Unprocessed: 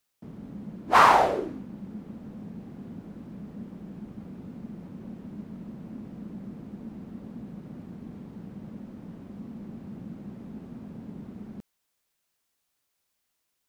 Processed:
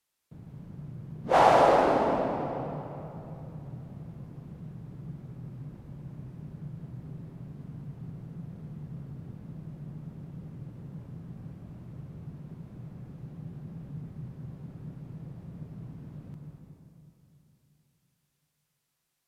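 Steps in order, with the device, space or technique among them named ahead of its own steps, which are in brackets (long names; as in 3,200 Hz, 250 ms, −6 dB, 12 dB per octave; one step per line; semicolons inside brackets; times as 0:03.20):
slowed and reverbed (speed change −29%; convolution reverb RT60 3.1 s, pre-delay 95 ms, DRR 1 dB)
level −4 dB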